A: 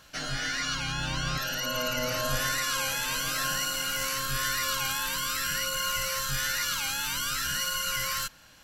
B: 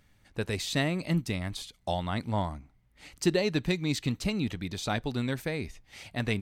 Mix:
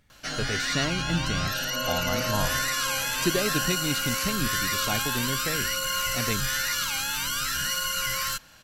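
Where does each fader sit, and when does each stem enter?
+2.0, -0.5 dB; 0.10, 0.00 s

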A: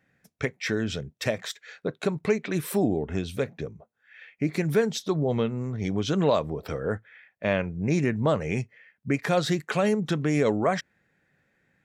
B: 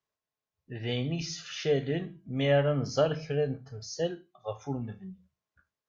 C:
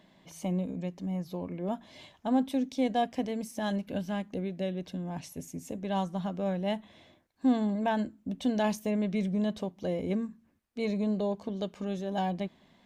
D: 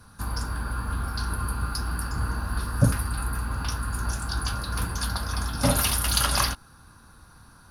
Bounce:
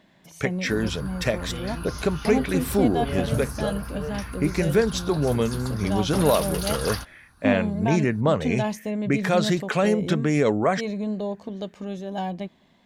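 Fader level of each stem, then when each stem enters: +2.5, -6.0, +1.5, -7.0 dB; 0.00, 0.65, 0.00, 0.50 s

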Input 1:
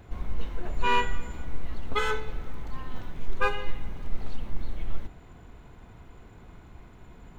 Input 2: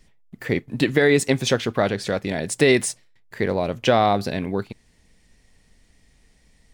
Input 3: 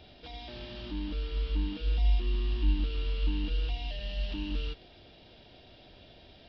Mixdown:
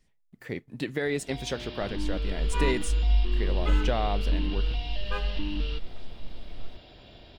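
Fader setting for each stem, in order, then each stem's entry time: -9.0, -12.0, +3.0 dB; 1.70, 0.00, 1.05 s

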